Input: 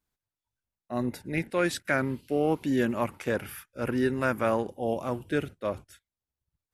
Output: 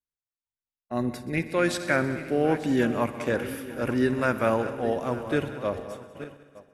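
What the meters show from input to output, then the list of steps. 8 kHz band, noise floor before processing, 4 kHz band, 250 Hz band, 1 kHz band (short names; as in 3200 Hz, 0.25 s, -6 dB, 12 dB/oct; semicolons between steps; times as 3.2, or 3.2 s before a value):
+1.5 dB, under -85 dBFS, +2.5 dB, +2.5 dB, +2.5 dB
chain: regenerating reverse delay 0.446 s, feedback 56%, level -13 dB; gate -45 dBFS, range -18 dB; LPF 11000 Hz 12 dB/oct; multi-head echo 63 ms, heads all three, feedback 55%, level -19 dB; gain +2 dB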